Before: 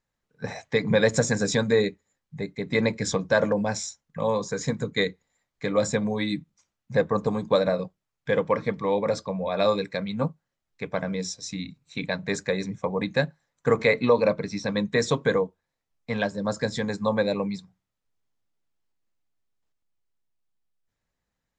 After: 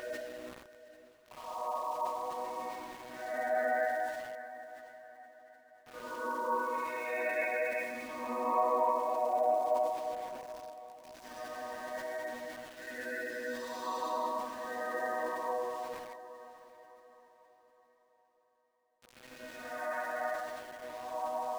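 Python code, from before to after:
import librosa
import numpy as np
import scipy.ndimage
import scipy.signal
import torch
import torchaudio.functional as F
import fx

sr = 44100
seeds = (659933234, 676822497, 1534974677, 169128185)

y = fx.chord_vocoder(x, sr, chord='major triad', root=59)
y = fx.spec_gate(y, sr, threshold_db=-20, keep='strong')
y = fx.vibrato(y, sr, rate_hz=5.1, depth_cents=14.0)
y = fx.paulstretch(y, sr, seeds[0], factor=5.4, window_s=0.25, from_s=12.52)
y = fx.low_shelf_res(y, sr, hz=550.0, db=-13.0, q=3.0)
y = np.where(np.abs(y) >= 10.0 ** (-41.0 / 20.0), y, 0.0)
y = fx.echo_diffused(y, sr, ms=660, feedback_pct=41, wet_db=-14)
y = fx.sustainer(y, sr, db_per_s=62.0)
y = y * 10.0 ** (-6.0 / 20.0)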